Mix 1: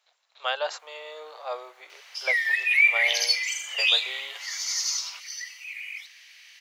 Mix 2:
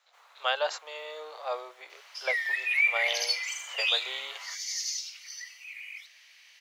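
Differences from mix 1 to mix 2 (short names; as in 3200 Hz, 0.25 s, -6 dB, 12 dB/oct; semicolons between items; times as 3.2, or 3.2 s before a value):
first sound: entry -0.65 s; second sound -5.5 dB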